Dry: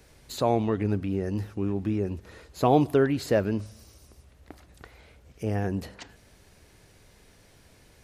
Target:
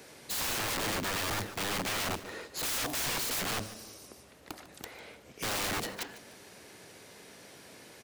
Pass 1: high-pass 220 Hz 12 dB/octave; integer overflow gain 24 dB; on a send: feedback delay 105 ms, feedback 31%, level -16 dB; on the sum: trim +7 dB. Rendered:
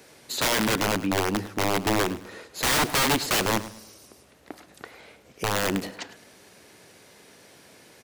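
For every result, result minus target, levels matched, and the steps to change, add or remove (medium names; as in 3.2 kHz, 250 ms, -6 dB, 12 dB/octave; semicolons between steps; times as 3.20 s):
integer overflow: distortion -16 dB; echo 44 ms early
change: integer overflow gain 35 dB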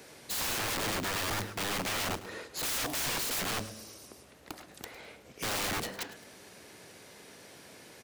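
echo 44 ms early
change: feedback delay 149 ms, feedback 31%, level -16 dB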